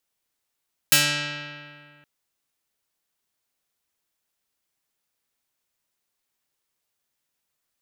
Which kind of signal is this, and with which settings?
plucked string D3, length 1.12 s, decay 2.16 s, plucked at 0.42, medium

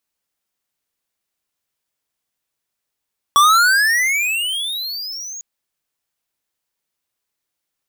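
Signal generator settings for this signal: gliding synth tone square, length 2.05 s, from 1130 Hz, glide +31 st, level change -20 dB, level -10 dB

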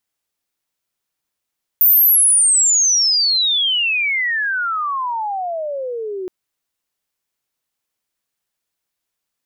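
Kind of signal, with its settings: chirp logarithmic 15000 Hz -> 360 Hz -8 dBFS -> -23 dBFS 4.47 s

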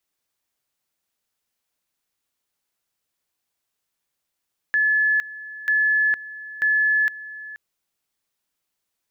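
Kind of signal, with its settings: two-level tone 1720 Hz -16 dBFS, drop 17.5 dB, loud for 0.46 s, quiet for 0.48 s, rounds 3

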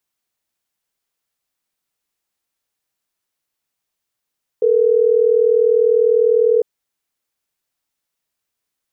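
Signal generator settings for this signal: call progress tone ringback tone, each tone -13.5 dBFS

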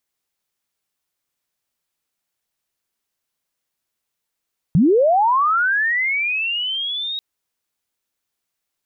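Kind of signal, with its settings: chirp linear 140 Hz -> 3800 Hz -10 dBFS -> -23 dBFS 2.44 s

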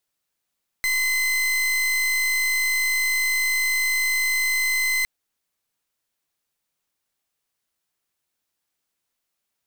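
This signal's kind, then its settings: pulse 2050 Hz, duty 40% -22 dBFS 4.21 s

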